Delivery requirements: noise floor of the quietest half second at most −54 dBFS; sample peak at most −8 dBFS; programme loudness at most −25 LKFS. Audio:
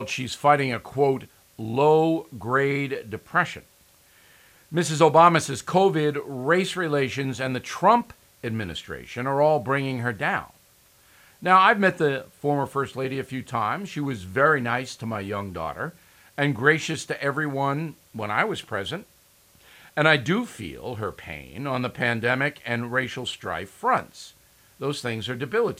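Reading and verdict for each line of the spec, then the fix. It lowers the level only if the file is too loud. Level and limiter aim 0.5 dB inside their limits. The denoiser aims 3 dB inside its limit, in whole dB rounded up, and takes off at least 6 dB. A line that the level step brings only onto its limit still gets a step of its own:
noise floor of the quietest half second −58 dBFS: in spec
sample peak −4.0 dBFS: out of spec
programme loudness −24.0 LKFS: out of spec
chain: level −1.5 dB
brickwall limiter −8.5 dBFS

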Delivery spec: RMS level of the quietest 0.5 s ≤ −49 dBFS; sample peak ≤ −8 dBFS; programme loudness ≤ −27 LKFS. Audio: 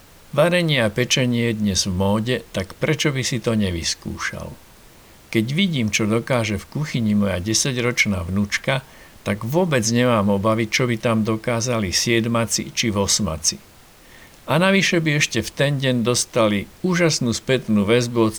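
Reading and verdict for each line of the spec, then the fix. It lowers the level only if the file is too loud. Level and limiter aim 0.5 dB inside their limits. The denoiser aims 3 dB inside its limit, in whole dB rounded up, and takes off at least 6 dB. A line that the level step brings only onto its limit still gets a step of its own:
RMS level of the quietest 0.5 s −47 dBFS: out of spec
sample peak −5.5 dBFS: out of spec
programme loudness −20.0 LKFS: out of spec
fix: level −7.5 dB

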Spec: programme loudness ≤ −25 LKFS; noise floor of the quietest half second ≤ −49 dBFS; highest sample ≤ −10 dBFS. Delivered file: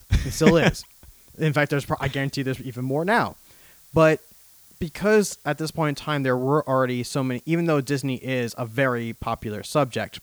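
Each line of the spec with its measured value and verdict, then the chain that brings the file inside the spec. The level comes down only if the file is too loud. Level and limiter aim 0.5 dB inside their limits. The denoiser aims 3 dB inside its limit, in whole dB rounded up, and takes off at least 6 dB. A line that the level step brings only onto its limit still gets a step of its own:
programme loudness −23.5 LKFS: out of spec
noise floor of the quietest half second −52 dBFS: in spec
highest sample −3.0 dBFS: out of spec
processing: level −2 dB
brickwall limiter −10.5 dBFS

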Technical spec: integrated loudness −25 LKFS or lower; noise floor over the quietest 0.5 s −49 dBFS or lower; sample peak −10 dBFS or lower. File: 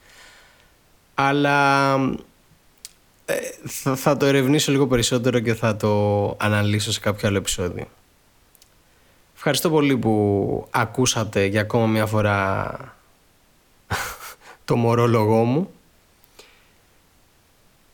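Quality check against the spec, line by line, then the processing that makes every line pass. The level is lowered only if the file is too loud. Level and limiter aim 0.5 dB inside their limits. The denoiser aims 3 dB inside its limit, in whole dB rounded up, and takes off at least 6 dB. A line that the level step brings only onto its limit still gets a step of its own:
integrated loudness −20.5 LKFS: out of spec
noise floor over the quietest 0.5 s −58 dBFS: in spec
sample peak −6.0 dBFS: out of spec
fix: level −5 dB

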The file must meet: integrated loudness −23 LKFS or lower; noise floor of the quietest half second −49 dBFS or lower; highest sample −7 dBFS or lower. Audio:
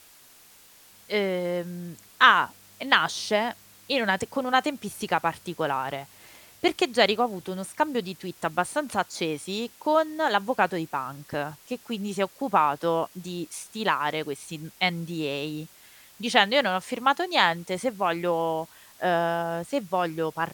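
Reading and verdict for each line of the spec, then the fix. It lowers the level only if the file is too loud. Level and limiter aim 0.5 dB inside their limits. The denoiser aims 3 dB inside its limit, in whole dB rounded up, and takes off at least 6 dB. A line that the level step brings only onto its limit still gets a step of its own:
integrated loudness −26.0 LKFS: in spec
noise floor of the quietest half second −53 dBFS: in spec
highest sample −2.5 dBFS: out of spec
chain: brickwall limiter −7.5 dBFS

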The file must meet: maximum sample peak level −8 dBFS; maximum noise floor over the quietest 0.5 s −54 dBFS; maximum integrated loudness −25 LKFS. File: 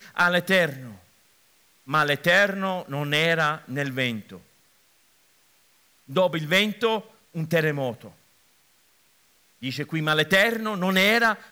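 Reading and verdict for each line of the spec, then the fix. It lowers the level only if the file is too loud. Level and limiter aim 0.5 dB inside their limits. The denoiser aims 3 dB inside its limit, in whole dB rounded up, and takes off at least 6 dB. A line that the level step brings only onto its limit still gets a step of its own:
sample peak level −10.5 dBFS: in spec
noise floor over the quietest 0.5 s −62 dBFS: in spec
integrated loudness −23.0 LKFS: out of spec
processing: level −2.5 dB

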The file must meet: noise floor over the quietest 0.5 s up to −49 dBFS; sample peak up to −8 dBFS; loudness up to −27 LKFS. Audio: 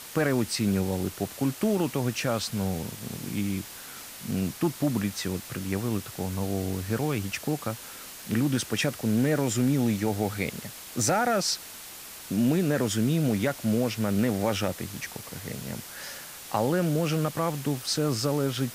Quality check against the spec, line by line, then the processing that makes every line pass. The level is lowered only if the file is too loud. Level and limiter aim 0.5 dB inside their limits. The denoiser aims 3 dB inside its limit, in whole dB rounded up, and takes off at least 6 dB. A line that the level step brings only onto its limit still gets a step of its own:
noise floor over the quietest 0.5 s −43 dBFS: out of spec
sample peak −12.0 dBFS: in spec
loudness −28.0 LKFS: in spec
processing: broadband denoise 9 dB, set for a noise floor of −43 dBFS

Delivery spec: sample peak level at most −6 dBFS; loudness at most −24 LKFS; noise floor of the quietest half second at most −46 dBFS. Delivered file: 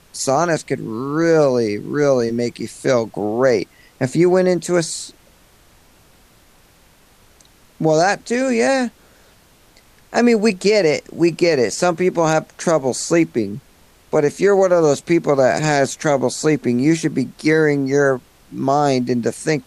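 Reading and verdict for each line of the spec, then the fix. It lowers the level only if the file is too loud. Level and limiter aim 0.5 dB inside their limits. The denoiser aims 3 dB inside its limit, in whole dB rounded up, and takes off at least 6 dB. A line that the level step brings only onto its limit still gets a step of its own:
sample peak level −4.0 dBFS: out of spec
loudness −17.5 LKFS: out of spec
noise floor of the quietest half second −51 dBFS: in spec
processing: level −7 dB

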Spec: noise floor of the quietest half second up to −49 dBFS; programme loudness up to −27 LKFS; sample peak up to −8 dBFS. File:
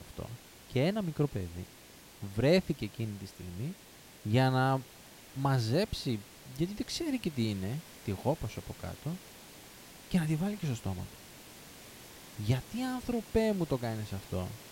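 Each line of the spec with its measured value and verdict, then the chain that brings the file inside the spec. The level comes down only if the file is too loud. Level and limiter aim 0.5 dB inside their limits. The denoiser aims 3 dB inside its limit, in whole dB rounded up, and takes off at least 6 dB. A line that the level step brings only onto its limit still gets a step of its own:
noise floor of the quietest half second −54 dBFS: in spec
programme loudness −33.5 LKFS: in spec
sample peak −13.5 dBFS: in spec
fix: no processing needed

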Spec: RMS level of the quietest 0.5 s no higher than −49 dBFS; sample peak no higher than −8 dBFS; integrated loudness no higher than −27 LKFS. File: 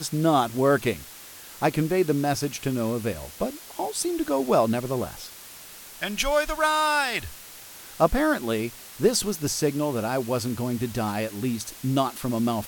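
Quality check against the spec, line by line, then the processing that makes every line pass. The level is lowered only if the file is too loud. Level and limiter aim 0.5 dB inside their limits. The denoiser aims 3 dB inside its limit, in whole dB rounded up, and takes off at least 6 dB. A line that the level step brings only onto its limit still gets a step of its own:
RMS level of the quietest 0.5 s −44 dBFS: out of spec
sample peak −6.5 dBFS: out of spec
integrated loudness −25.5 LKFS: out of spec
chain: broadband denoise 6 dB, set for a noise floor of −44 dBFS
level −2 dB

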